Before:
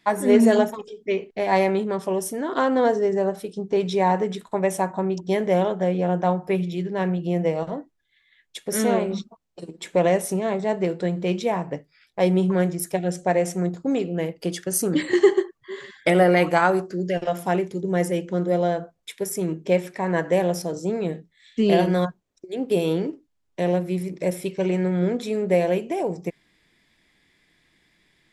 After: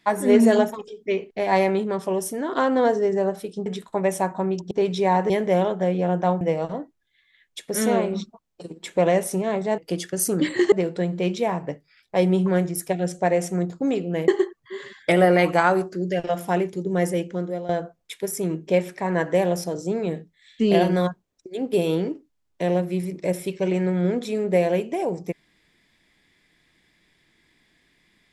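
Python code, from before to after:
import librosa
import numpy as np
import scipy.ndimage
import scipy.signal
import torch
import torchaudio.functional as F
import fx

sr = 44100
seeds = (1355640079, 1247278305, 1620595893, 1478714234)

y = fx.edit(x, sr, fx.move(start_s=3.66, length_s=0.59, to_s=5.3),
    fx.cut(start_s=6.41, length_s=0.98),
    fx.move(start_s=14.32, length_s=0.94, to_s=10.76),
    fx.fade_out_to(start_s=18.18, length_s=0.49, floor_db=-14.5), tone=tone)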